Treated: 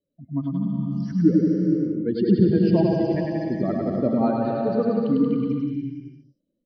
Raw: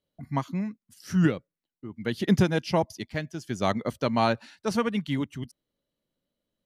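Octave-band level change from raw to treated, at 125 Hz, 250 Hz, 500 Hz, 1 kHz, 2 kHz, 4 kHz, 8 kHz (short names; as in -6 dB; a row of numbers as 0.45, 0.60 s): +5.0 dB, +8.0 dB, +6.0 dB, -2.0 dB, -8.0 dB, n/a, under -15 dB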